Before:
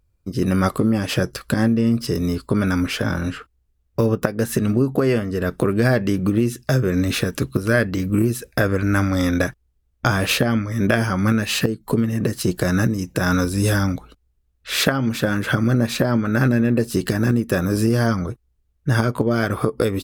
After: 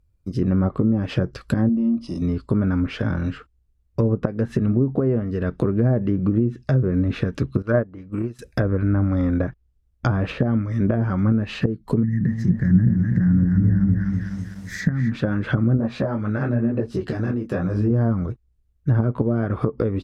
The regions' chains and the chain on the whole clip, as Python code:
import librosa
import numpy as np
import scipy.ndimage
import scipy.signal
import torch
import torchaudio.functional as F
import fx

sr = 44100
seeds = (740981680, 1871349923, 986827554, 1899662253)

y = fx.chain(x, sr, fx.fixed_phaser(hz=440.0, stages=6),
    fx.resample_bad(factor=3, down='filtered', up='hold'), at=(1.69, 2.22))
y = fx.chain(y, sr, fx.peak_eq(hz=970.0, db=10.0, octaves=2.4),
    fx.upward_expand(threshold_db=-21.0, expansion=2.5), at=(7.62, 8.39))
y = fx.chain(y, sr, fx.curve_eq(hz=(100.0, 180.0, 360.0, 610.0, 1300.0, 1900.0, 2700.0, 6500.0, 9500.0, 15000.0), db=(0, 5, -12, -20, -13, 8, -24, 1, -10, 6)),
    fx.echo_crushed(ms=250, feedback_pct=55, bits=7, wet_db=-4.0), at=(12.03, 15.12))
y = fx.chain(y, sr, fx.peak_eq(hz=750.0, db=5.5, octaves=1.6),
    fx.detune_double(cents=34), at=(15.77, 17.91))
y = fx.env_lowpass_down(y, sr, base_hz=820.0, full_db=-13.5)
y = fx.low_shelf(y, sr, hz=300.0, db=8.0)
y = y * librosa.db_to_amplitude(-6.0)